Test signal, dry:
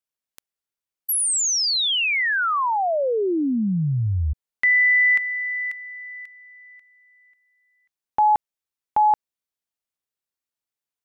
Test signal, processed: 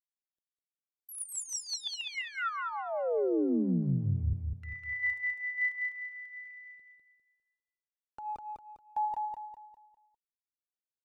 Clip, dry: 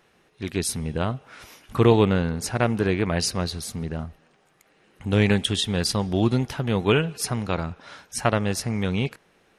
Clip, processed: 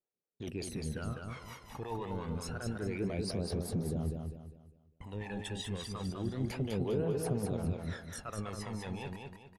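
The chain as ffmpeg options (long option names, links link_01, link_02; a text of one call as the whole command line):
ffmpeg -i in.wav -filter_complex "[0:a]agate=range=-41dB:threshold=-52dB:ratio=16:release=93:detection=peak,areverse,acompressor=threshold=-28dB:ratio=12:attack=0.14:release=52:knee=1:detection=rms,areverse,adynamicequalizer=threshold=0.00501:dfrequency=3800:dqfactor=0.75:tfrequency=3800:tqfactor=0.75:attack=5:release=100:ratio=0.375:range=2:mode=cutabove:tftype=bell,aphaser=in_gain=1:out_gain=1:delay=1.2:decay=0.76:speed=0.28:type=triangular,equalizer=frequency=500:width_type=o:width=2.2:gain=12,acrossover=split=520[link_01][link_02];[link_01]aeval=exprs='val(0)*(1-0.7/2+0.7/2*cos(2*PI*5.6*n/s))':channel_layout=same[link_03];[link_02]aeval=exprs='val(0)*(1-0.7/2-0.7/2*cos(2*PI*5.6*n/s))':channel_layout=same[link_04];[link_03][link_04]amix=inputs=2:normalize=0,alimiter=limit=-17dB:level=0:latency=1:release=100,asplit=2[link_05][link_06];[link_06]aecho=0:1:201|402|603|804|1005:0.631|0.233|0.0864|0.032|0.0118[link_07];[link_05][link_07]amix=inputs=2:normalize=0,volume=-9dB" out.wav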